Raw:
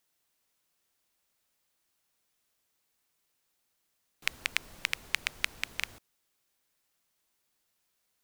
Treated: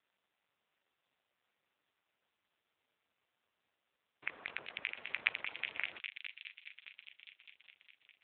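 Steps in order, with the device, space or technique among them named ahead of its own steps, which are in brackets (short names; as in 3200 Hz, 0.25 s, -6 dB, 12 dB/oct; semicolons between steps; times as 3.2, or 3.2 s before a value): 4.51–4.96 high shelf 4100 Hz -3.5 dB; thin delay 0.205 s, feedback 78%, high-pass 4700 Hz, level -3 dB; dynamic EQ 3300 Hz, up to -3 dB, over -53 dBFS, Q 2.5; telephone (BPF 340–3400 Hz; soft clip -15 dBFS, distortion -13 dB; gain +6.5 dB; AMR-NB 5.9 kbps 8000 Hz)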